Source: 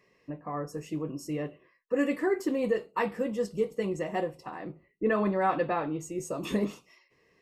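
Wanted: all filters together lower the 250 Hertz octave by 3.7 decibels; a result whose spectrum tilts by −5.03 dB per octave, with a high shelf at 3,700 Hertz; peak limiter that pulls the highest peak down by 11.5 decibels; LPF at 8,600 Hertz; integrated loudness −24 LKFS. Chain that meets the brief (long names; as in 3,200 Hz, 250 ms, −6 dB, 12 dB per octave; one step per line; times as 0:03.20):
low-pass filter 8,600 Hz
parametric band 250 Hz −5 dB
high-shelf EQ 3,700 Hz +4 dB
level +13.5 dB
brickwall limiter −14 dBFS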